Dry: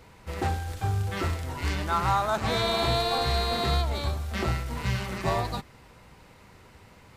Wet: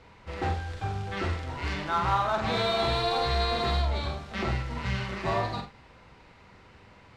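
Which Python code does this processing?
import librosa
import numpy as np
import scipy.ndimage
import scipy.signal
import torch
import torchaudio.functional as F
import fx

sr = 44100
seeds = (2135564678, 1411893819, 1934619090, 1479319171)

p1 = scipy.signal.sosfilt(scipy.signal.butter(2, 4500.0, 'lowpass', fs=sr, output='sos'), x)
p2 = fx.low_shelf(p1, sr, hz=450.0, db=-3.0)
p3 = np.clip(p2, -10.0 ** (-24.5 / 20.0), 10.0 ** (-24.5 / 20.0))
p4 = p2 + (p3 * 10.0 ** (-5.0 / 20.0))
p5 = fx.echo_multitap(p4, sr, ms=(46, 87, 101), db=(-5.5, -16.5, -17.5))
y = p5 * 10.0 ** (-4.5 / 20.0)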